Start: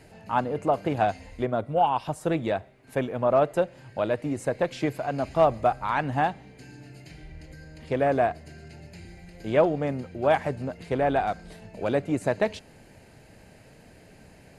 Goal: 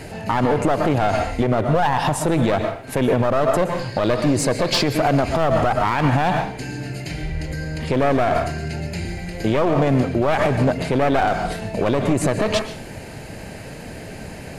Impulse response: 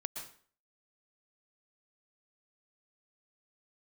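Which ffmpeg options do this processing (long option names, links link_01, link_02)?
-filter_complex "[0:a]asettb=1/sr,asplit=3[link_01][link_02][link_03];[link_01]atrim=end=3.794[link_04];[link_02]atrim=start=3.79:end=4.86,asetpts=PTS-STARTPTS,afade=type=in:duration=0.004:curve=qsin,afade=type=out:start_time=1.066:duration=0.004:curve=qsin,equalizer=frequency=4600:width=2.8:gain=12.5[link_05];[link_03]atrim=start=4.856[link_06];[link_04][link_05]acrossfade=duration=0.004:curve1=hsin:curve2=qsin[link_07];[link_07][link_06]acrossfade=duration=0.004:curve1=qsin:curve2=hsin,aeval=exprs='clip(val(0),-1,0.0266)':channel_layout=same,asplit=2[link_08][link_09];[1:a]atrim=start_sample=2205[link_10];[link_09][link_10]afir=irnorm=-1:irlink=0,volume=-4dB[link_11];[link_08][link_11]amix=inputs=2:normalize=0,alimiter=level_in=21dB:limit=-1dB:release=50:level=0:latency=1,volume=-7.5dB"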